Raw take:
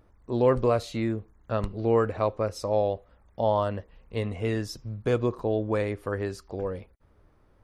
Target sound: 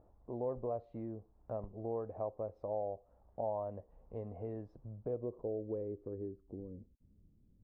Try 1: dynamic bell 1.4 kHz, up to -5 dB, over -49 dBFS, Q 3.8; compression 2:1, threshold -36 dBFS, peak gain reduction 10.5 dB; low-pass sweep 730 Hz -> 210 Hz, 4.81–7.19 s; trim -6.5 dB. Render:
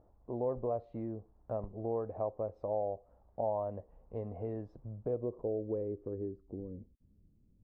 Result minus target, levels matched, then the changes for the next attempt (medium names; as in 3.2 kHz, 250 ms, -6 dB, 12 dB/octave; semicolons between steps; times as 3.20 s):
compression: peak gain reduction -3.5 dB
change: compression 2:1, threshold -43 dBFS, peak gain reduction 14 dB